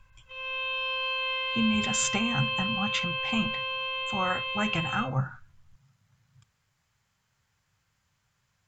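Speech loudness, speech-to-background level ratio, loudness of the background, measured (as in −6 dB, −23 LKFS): −30.5 LKFS, −1.0 dB, −29.5 LKFS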